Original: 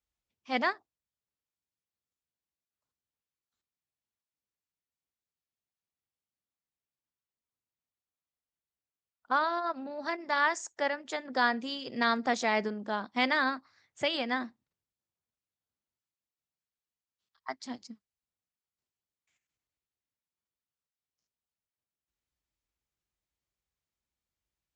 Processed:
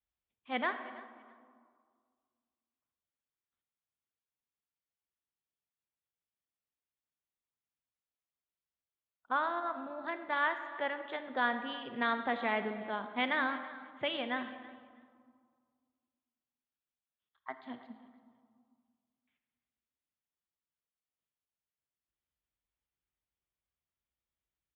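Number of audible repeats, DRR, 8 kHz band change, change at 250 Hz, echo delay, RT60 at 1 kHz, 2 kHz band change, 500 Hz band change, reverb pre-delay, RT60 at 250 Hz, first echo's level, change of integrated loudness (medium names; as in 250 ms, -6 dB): 2, 8.5 dB, under -30 dB, -4.5 dB, 326 ms, 2.0 s, -3.5 dB, -4.0 dB, 38 ms, 2.2 s, -19.5 dB, -4.5 dB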